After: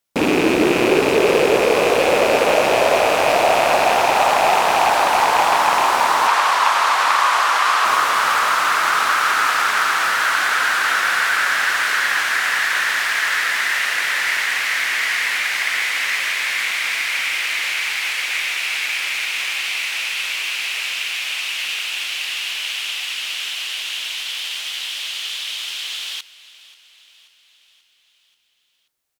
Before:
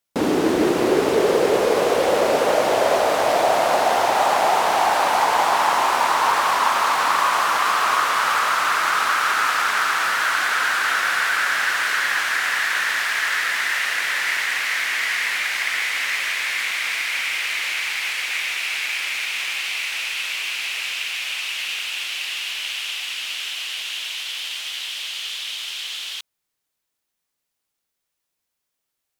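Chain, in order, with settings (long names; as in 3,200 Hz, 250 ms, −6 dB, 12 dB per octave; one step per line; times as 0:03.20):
loose part that buzzes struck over −36 dBFS, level −13 dBFS
0:06.27–0:07.85: meter weighting curve A
on a send: repeating echo 534 ms, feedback 57%, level −19.5 dB
on the sum: level +2.5 dB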